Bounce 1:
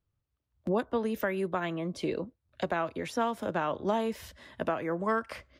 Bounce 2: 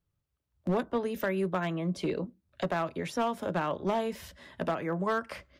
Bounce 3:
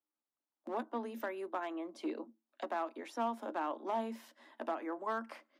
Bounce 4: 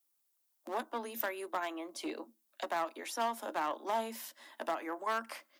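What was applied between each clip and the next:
on a send at -15 dB: reverberation RT60 0.15 s, pre-delay 3 ms; on the sum: hard clipper -22.5 dBFS, distortion -17 dB
rippled Chebyshev high-pass 220 Hz, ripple 9 dB; trim -2.5 dB
Chebyshev shaper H 4 -19 dB, 6 -29 dB, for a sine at -23 dBFS; RIAA curve recording; trim +3 dB

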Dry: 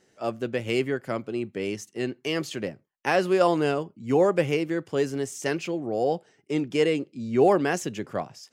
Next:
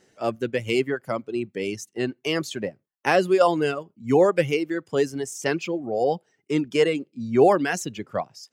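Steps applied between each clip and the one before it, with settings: reverb removal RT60 1.8 s; trim +3.5 dB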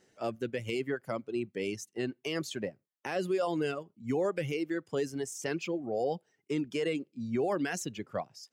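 dynamic bell 1 kHz, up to -3 dB, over -33 dBFS, Q 1.2; peak limiter -16.5 dBFS, peak gain reduction 10 dB; trim -6 dB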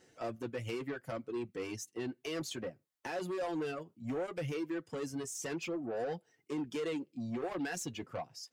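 in parallel at +1 dB: compression, threshold -39 dBFS, peak gain reduction 12 dB; on the sum: saturation -28.5 dBFS, distortion -11 dB; comb of notches 200 Hz; trim -3 dB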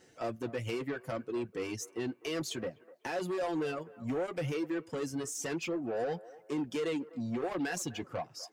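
feedback echo behind a band-pass 250 ms, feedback 36%, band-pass 860 Hz, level -17 dB; trim +3 dB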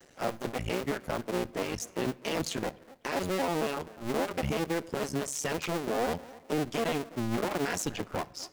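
cycle switcher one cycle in 2, muted; on a send at -19 dB: reverberation RT60 1.0 s, pre-delay 5 ms; on the sum: trim +6.5 dB

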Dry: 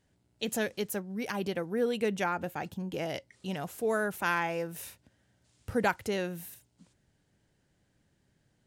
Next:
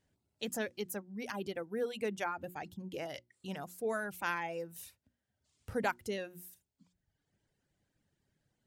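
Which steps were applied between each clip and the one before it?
reverb removal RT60 1.1 s; hum notches 60/120/180/240/300/360 Hz; trim -5 dB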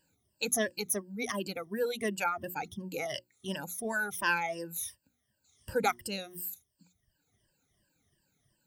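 drifting ripple filter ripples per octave 1.3, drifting -2.8 Hz, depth 20 dB; treble shelf 4.1 kHz +9 dB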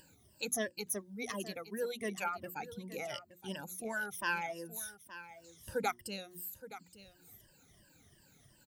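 upward compressor, threshold -44 dBFS; delay 871 ms -14.5 dB; trim -5.5 dB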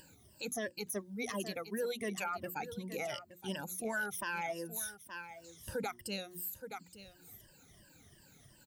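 peak limiter -31 dBFS, peak gain reduction 11 dB; trim +3 dB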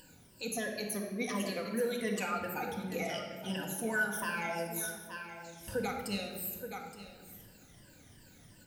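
simulated room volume 1800 m³, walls mixed, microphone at 1.9 m

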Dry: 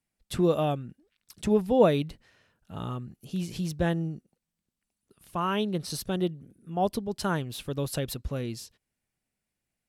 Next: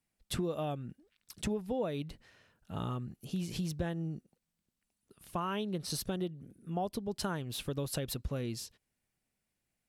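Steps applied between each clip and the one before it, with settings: compression 6:1, threshold -32 dBFS, peak gain reduction 16 dB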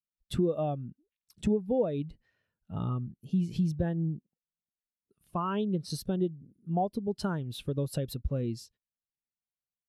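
spectral contrast expander 1.5:1; trim +5 dB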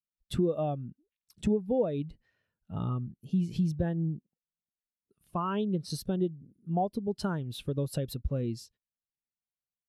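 no audible change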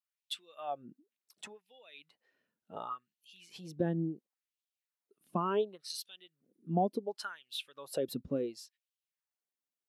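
LFO high-pass sine 0.7 Hz 230–3100 Hz; trim -2 dB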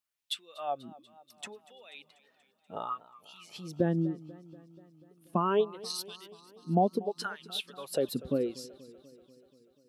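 modulated delay 242 ms, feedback 66%, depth 110 cents, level -20 dB; trim +4.5 dB

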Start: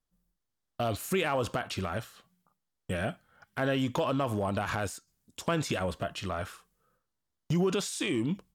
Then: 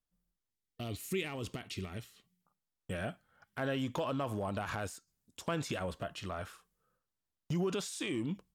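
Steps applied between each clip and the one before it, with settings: time-frequency box 0.50–2.41 s, 460–1800 Hz -10 dB; trim -6 dB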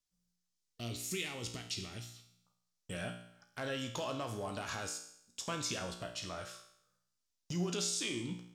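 peaking EQ 5.8 kHz +14 dB 1.5 oct; feedback comb 59 Hz, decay 0.7 s, harmonics all, mix 80%; trim +4.5 dB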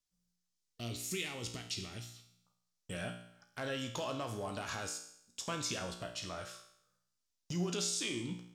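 no audible change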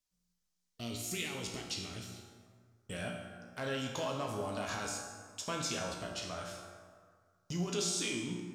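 plate-style reverb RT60 2 s, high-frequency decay 0.5×, DRR 3 dB

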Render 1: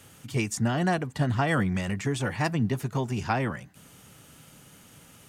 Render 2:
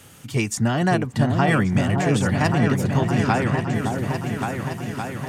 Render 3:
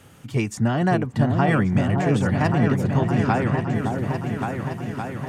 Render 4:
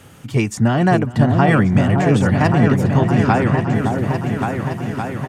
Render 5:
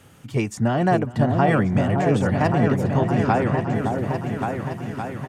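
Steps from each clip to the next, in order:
delay with an opening low-pass 565 ms, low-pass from 750 Hz, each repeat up 2 oct, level -3 dB; trim +5 dB
treble shelf 2.8 kHz -9.5 dB
delay 414 ms -20 dB; trim +5.5 dB
dynamic bell 580 Hz, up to +5 dB, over -27 dBFS, Q 1; trim -6.5 dB

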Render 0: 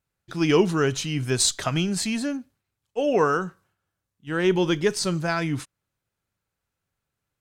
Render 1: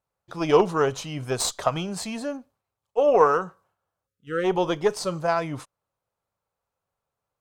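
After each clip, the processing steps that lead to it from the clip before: Chebyshev shaper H 3 -23 dB, 4 -23 dB, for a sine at -7 dBFS; high-order bell 740 Hz +11 dB; spectral selection erased 4.07–4.44 s, 580–1200 Hz; trim -4 dB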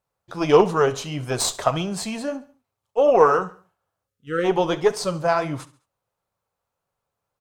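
flange 1.6 Hz, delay 5 ms, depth 5.9 ms, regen -62%; feedback delay 69 ms, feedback 42%, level -18 dB; trim +7 dB

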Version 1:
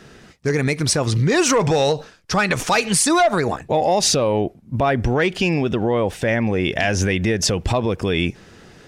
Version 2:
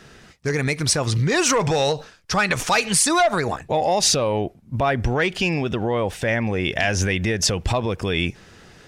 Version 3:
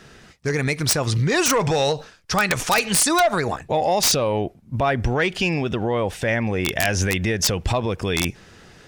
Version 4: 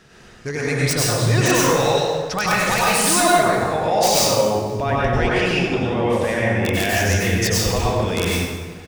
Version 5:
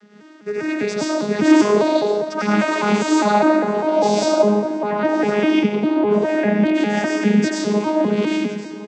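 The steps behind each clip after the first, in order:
peaking EQ 290 Hz -4.5 dB 2.3 oct
integer overflow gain 9.5 dB
echo from a far wall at 90 m, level -21 dB; plate-style reverb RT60 1.4 s, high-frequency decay 0.7×, pre-delay 80 ms, DRR -6.5 dB; trim -4.5 dB
vocoder on a broken chord bare fifth, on G#3, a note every 201 ms; feedback delay 1060 ms, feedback 33%, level -16.5 dB; trim +2.5 dB

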